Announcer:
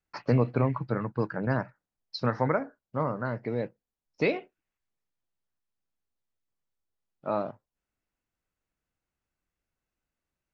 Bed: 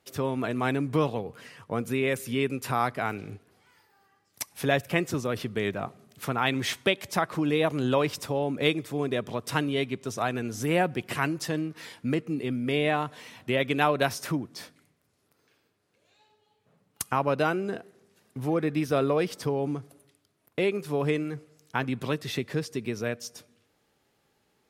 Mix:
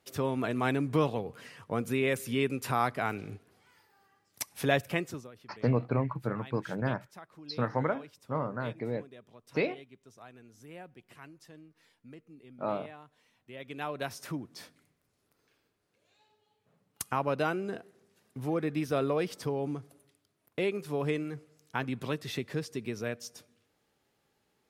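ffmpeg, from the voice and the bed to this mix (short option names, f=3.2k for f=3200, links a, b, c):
-filter_complex "[0:a]adelay=5350,volume=-3.5dB[a];[1:a]volume=16.5dB,afade=t=out:st=4.78:d=0.53:silence=0.0891251,afade=t=in:st=13.47:d=1.34:silence=0.11885[b];[a][b]amix=inputs=2:normalize=0"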